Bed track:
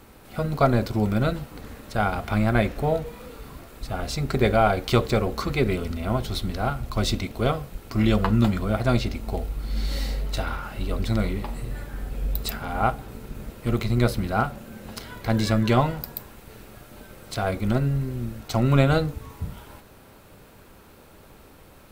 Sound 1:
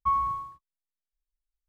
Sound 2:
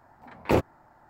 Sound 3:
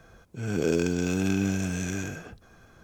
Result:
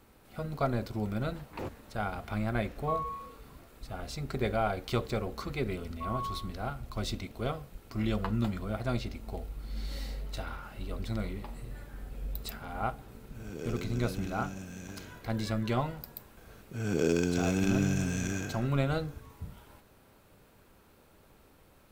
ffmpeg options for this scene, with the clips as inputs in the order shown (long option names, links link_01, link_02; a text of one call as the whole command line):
ffmpeg -i bed.wav -i cue0.wav -i cue1.wav -i cue2.wav -filter_complex "[1:a]asplit=2[link_01][link_02];[3:a]asplit=2[link_03][link_04];[0:a]volume=-10.5dB[link_05];[2:a]alimiter=limit=-20dB:level=0:latency=1:release=11[link_06];[link_02]dynaudnorm=framelen=160:gausssize=3:maxgain=11.5dB[link_07];[link_06]atrim=end=1.09,asetpts=PTS-STARTPTS,volume=-9.5dB,afade=type=in:duration=0.004:curve=hsin,afade=type=out:start_time=1.086:duration=0.004:curve=hsin,adelay=1080[link_08];[link_01]atrim=end=1.68,asetpts=PTS-STARTPTS,volume=-9dB,afade=type=in:duration=0.004:curve=hsin,afade=type=out:start_time=1.676:duration=0.004:curve=hsin,adelay=2820[link_09];[link_07]atrim=end=1.68,asetpts=PTS-STARTPTS,volume=-16dB,afade=type=in:duration=0.004:curve=hsin,afade=type=out:start_time=1.676:duration=0.004:curve=hsin,adelay=5950[link_10];[link_03]atrim=end=2.83,asetpts=PTS-STARTPTS,volume=-14.5dB,afade=type=in:duration=0.004:curve=hsin,afade=type=out:start_time=2.826:duration=0.004:curve=hsin,adelay=12970[link_11];[link_04]atrim=end=2.83,asetpts=PTS-STARTPTS,volume=-2.5dB,afade=type=in:duration=0.004:curve=hsin,afade=type=out:start_time=2.826:duration=0.004:curve=hsin,adelay=16370[link_12];[link_05][link_08][link_09][link_10][link_11][link_12]amix=inputs=6:normalize=0" out.wav